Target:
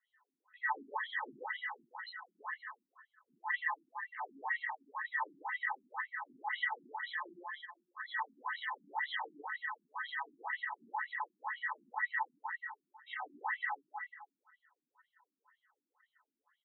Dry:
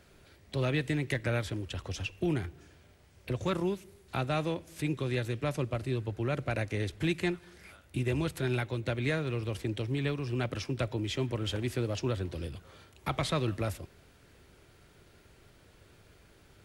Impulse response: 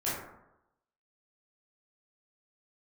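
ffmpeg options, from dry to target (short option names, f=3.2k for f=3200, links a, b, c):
-filter_complex "[0:a]aecho=1:1:255|510|765:0.355|0.103|0.0298[a];[1:a]atrim=start_sample=2205[b];[a][b]afir=irnorm=-1:irlink=0,asoftclip=type=tanh:threshold=-20dB,afftdn=nr=15:nf=-40,asplit=3[c][d][e];[c]bandpass=f=530:t=q:w=8,volume=0dB[f];[d]bandpass=f=1.84k:t=q:w=8,volume=-6dB[g];[e]bandpass=f=2.48k:t=q:w=8,volume=-9dB[h];[f][g][h]amix=inputs=3:normalize=0,aemphasis=mode=reproduction:type=bsi,aeval=exprs='val(0)*sin(2*PI*1400*n/s)':c=same,afftfilt=real='re*between(b*sr/1024,240*pow(3100/240,0.5+0.5*sin(2*PI*2*pts/sr))/1.41,240*pow(3100/240,0.5+0.5*sin(2*PI*2*pts/sr))*1.41)':imag='im*between(b*sr/1024,240*pow(3100/240,0.5+0.5*sin(2*PI*2*pts/sr))/1.41,240*pow(3100/240,0.5+0.5*sin(2*PI*2*pts/sr))*1.41)':win_size=1024:overlap=0.75,volume=7dB"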